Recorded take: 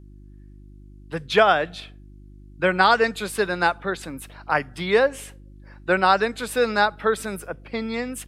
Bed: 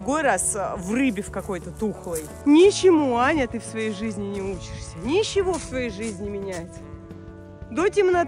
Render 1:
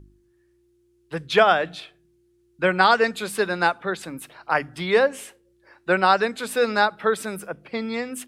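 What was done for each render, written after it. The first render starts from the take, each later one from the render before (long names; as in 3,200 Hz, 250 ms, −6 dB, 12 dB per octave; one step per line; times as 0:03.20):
hum removal 50 Hz, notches 6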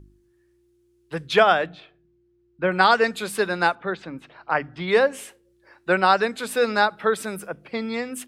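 0:01.66–0:02.72: head-to-tape spacing loss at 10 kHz 27 dB
0:03.75–0:04.88: high-frequency loss of the air 190 metres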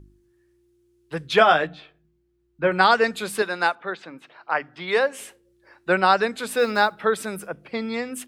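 0:01.39–0:02.72: double-tracking delay 13 ms −5 dB
0:03.42–0:05.20: high-pass filter 490 Hz 6 dB per octave
0:06.59–0:06.99: one scale factor per block 7 bits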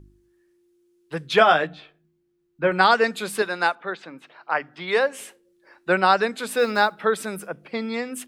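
mains-hum notches 60/120 Hz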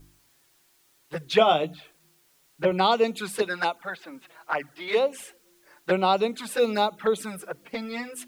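bit-depth reduction 10 bits, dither triangular
flanger swept by the level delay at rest 7.6 ms, full sweep at −18.5 dBFS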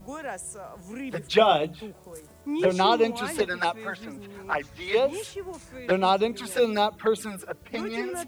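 mix in bed −14.5 dB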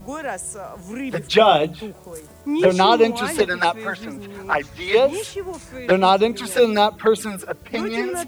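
level +7 dB
brickwall limiter −3 dBFS, peak gain reduction 2.5 dB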